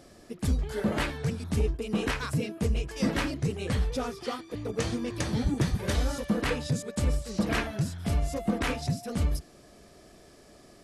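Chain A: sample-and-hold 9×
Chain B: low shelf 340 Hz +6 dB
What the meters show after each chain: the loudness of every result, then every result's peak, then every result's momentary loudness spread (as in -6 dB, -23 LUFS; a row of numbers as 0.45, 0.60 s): -30.5, -26.5 LUFS; -14.5, -10.0 dBFS; 4, 4 LU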